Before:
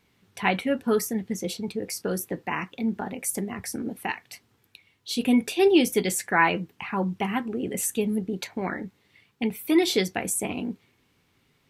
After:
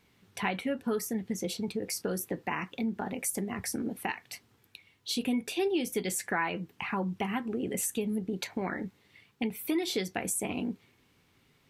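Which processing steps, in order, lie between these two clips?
compressor 3:1, threshold -30 dBFS, peak gain reduction 12.5 dB

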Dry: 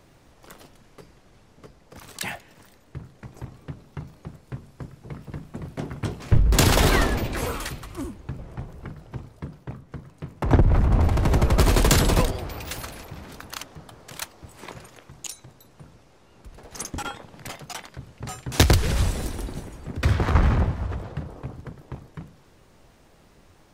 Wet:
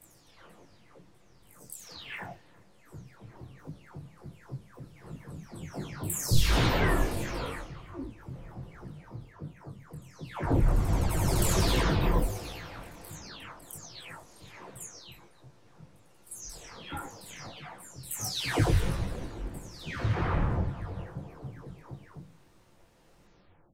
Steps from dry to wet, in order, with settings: spectral delay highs early, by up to 0.489 s; detuned doubles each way 47 cents; gain -1.5 dB

